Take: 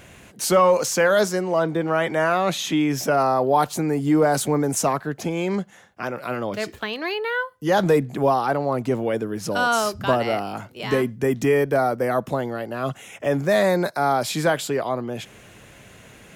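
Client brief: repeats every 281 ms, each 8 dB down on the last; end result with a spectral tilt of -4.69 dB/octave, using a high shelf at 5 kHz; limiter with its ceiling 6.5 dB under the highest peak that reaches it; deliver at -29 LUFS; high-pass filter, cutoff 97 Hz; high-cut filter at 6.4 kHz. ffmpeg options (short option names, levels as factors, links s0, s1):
-af "highpass=97,lowpass=6400,highshelf=f=5000:g=-4.5,alimiter=limit=0.211:level=0:latency=1,aecho=1:1:281|562|843|1124|1405:0.398|0.159|0.0637|0.0255|0.0102,volume=0.531"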